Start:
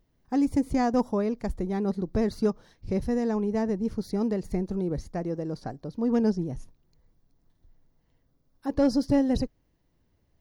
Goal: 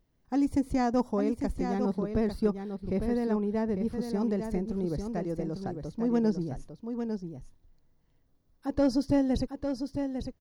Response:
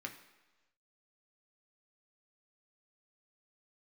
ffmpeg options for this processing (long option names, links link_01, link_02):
-filter_complex "[0:a]asettb=1/sr,asplit=3[link_01][link_02][link_03];[link_01]atrim=end=1.784[link_04];[link_02]atrim=start=1.78:end=3.93,asetpts=PTS-STARTPTS,afade=type=in:duration=0.004:curve=qsin,afade=type=out:start_time=2.146:duration=0.004:curve=qsin,equalizer=frequency=6500:width_type=o:width=0.34:gain=-14.5[link_05];[link_03]atrim=start=3.926[link_06];[link_04][link_05]acrossfade=duration=0.004:curve1=hsin:curve2=qsin[link_07];[link_07][link_06]acrossfade=duration=0.004:curve1=qsin:curve2=hsin,aecho=1:1:851:0.447,volume=-2.5dB"